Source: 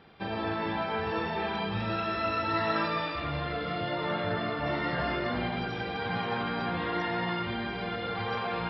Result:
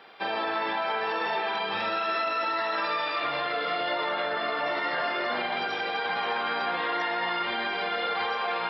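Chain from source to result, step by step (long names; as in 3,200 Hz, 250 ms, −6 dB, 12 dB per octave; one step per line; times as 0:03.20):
high-pass filter 540 Hz 12 dB per octave
brickwall limiter −28 dBFS, peak gain reduction 9.5 dB
level +8 dB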